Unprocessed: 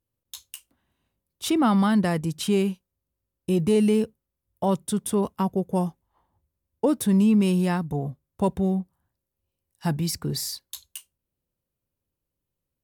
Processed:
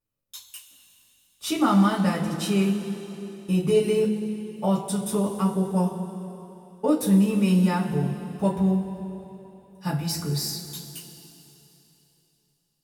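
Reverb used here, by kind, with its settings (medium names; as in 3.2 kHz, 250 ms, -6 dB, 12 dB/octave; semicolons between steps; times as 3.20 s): two-slope reverb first 0.21 s, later 3.3 s, from -18 dB, DRR -9 dB; trim -8.5 dB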